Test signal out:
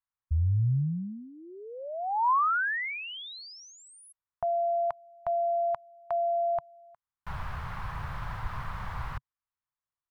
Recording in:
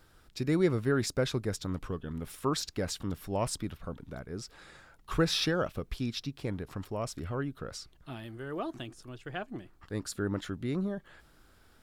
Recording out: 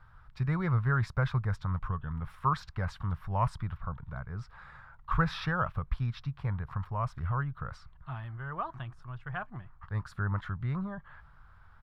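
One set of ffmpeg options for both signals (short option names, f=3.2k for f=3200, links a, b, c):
-af "firequalizer=gain_entry='entry(130,0);entry(280,-24);entry(1000,2);entry(2600,-14);entry(6900,-29)':delay=0.05:min_phase=1,volume=7dB"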